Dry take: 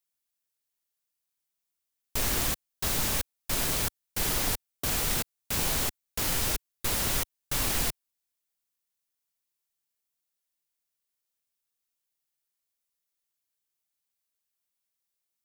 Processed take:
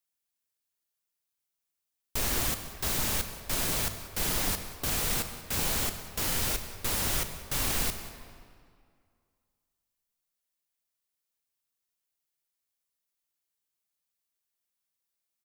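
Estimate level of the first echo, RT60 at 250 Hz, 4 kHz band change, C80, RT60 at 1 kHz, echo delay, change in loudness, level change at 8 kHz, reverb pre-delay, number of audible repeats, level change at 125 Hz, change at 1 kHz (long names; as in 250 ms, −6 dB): −19.0 dB, 2.3 s, −1.0 dB, 9.5 dB, 2.2 s, 187 ms, −1.0 dB, −1.0 dB, 20 ms, 1, −0.5 dB, −0.5 dB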